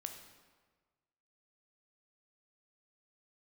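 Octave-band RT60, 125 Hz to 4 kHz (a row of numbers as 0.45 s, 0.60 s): 1.6 s, 1.4 s, 1.5 s, 1.4 s, 1.2 s, 1.0 s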